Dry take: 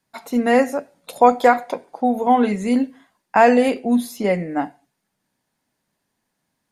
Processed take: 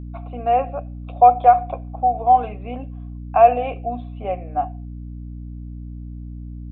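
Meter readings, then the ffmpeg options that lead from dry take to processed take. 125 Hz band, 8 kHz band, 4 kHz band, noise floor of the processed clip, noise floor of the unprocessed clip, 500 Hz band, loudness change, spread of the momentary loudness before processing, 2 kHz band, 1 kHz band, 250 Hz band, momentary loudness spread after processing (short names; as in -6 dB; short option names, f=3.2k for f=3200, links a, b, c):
+6.0 dB, under -40 dB, under -10 dB, -34 dBFS, -76 dBFS, -2.5 dB, 0.0 dB, 12 LU, -13.0 dB, +3.5 dB, -14.5 dB, 21 LU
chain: -filter_complex "[0:a]asplit=3[a][b][c];[a]bandpass=f=730:t=q:w=8,volume=0dB[d];[b]bandpass=f=1.09k:t=q:w=8,volume=-6dB[e];[c]bandpass=f=2.44k:t=q:w=8,volume=-9dB[f];[d][e][f]amix=inputs=3:normalize=0,aresample=8000,aresample=44100,aeval=exprs='val(0)+0.0141*(sin(2*PI*60*n/s)+sin(2*PI*2*60*n/s)/2+sin(2*PI*3*60*n/s)/3+sin(2*PI*4*60*n/s)/4+sin(2*PI*5*60*n/s)/5)':c=same,volume=5.5dB"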